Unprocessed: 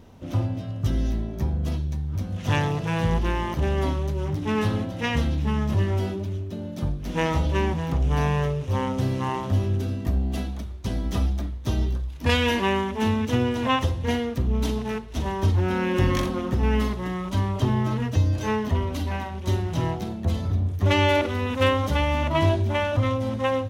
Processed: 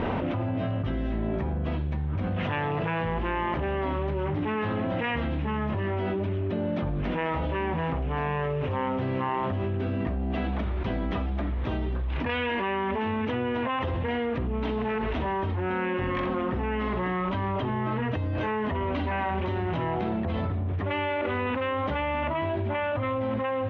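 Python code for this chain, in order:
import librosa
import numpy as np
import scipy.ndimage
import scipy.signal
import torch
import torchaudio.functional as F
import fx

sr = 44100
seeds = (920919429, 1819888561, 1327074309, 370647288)

y = scipy.signal.sosfilt(scipy.signal.butter(4, 2600.0, 'lowpass', fs=sr, output='sos'), x)
y = fx.low_shelf(y, sr, hz=240.0, db=-11.5)
y = fx.env_flatten(y, sr, amount_pct=100)
y = y * librosa.db_to_amplitude(-7.5)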